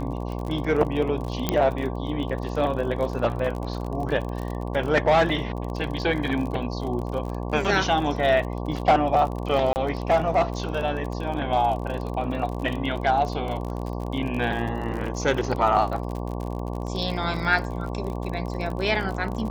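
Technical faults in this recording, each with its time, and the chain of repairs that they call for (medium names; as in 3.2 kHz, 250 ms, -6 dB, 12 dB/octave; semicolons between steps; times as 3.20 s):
buzz 60 Hz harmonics 19 -30 dBFS
crackle 39 per s -30 dBFS
1.49 s: pop -7 dBFS
9.73–9.76 s: dropout 29 ms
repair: de-click; de-hum 60 Hz, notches 19; interpolate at 9.73 s, 29 ms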